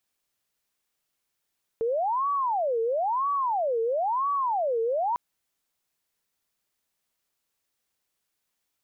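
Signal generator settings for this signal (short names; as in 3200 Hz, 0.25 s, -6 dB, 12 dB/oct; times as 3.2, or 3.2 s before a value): siren wail 451–1140 Hz 1/s sine -23 dBFS 3.35 s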